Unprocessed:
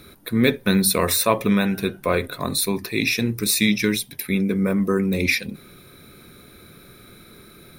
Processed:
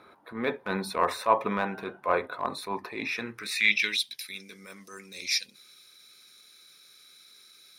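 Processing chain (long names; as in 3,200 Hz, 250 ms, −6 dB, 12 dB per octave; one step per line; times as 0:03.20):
band-pass filter sweep 920 Hz → 5,500 Hz, 0:03.01–0:04.29
transient designer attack −8 dB, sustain 0 dB
level +6 dB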